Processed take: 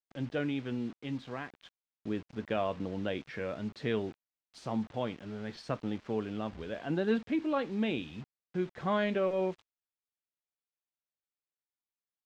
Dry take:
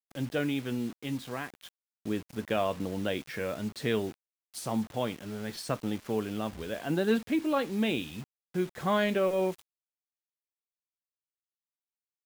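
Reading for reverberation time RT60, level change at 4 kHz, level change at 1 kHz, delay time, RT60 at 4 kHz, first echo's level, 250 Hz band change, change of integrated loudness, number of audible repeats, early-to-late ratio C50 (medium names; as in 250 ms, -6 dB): no reverb, -6.0 dB, -3.0 dB, no echo, no reverb, no echo, -2.5 dB, -3.0 dB, no echo, no reverb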